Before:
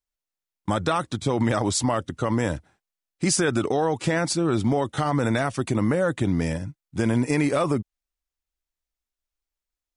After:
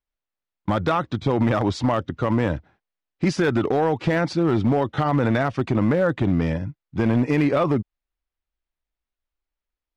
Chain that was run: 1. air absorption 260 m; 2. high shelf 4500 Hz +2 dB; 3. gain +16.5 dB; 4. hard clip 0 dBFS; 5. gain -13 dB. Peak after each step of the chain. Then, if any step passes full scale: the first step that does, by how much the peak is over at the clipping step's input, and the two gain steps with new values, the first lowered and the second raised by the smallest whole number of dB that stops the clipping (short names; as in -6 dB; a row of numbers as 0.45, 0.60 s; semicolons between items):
-11.5, -11.5, +5.0, 0.0, -13.0 dBFS; step 3, 5.0 dB; step 3 +11.5 dB, step 5 -8 dB